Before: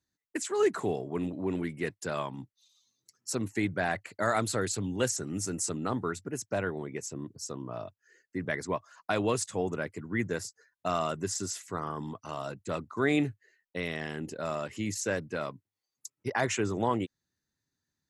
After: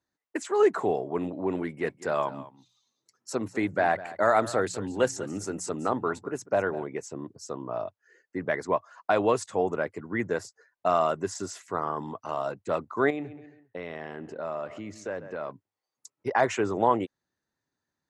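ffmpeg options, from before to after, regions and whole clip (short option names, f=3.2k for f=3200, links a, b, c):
-filter_complex "[0:a]asettb=1/sr,asplit=3[a][b][c];[a]atrim=end=1.604[d];[b]atrim=start=1.6:end=6.84,asetpts=PTS-STARTPTS,afade=t=in:d=0.004:c=qsin,afade=t=out:st=5.236:d=0.004:c=qsin,bandreject=f=60:t=h:w=6,bandreject=f=120:t=h:w=6,bandreject=f=180:t=h:w=6,aecho=1:1:202:0.15,atrim=end_sample=231084[e];[c]atrim=start=6.836[f];[d][e]acrossfade=d=0.004:c1=hsin:c2=qsin[g];[g][f]acrossfade=d=0.004:c1=qsin:c2=hsin,asettb=1/sr,asplit=3[h][i][j];[h]atrim=end=13.104[k];[i]atrim=start=13.1:end=15.51,asetpts=PTS-STARTPTS,afade=t=in:d=0.004:c=qsin,afade=t=out:st=2.406:d=0.004:c=qsin,aemphasis=mode=reproduction:type=50fm,asplit=2[l][m];[m]adelay=134,lowpass=f=3.1k:p=1,volume=-18dB,asplit=2[n][o];[o]adelay=134,lowpass=f=3.1k:p=1,volume=0.39,asplit=2[p][q];[q]adelay=134,lowpass=f=3.1k:p=1,volume=0.39[r];[l][n][p][r]amix=inputs=4:normalize=0,atrim=end_sample=106281,acompressor=threshold=-40dB:ratio=2:attack=3.2:release=140:knee=1:detection=peak[s];[j]atrim=start=15.506[t];[k][s]acrossfade=d=0.004:c1=hsin:c2=qsin[u];[u][t]acrossfade=d=0.004:c1=qsin:c2=hsin,lowpass=10k,equalizer=f=740:w=0.44:g=13,volume=-5dB"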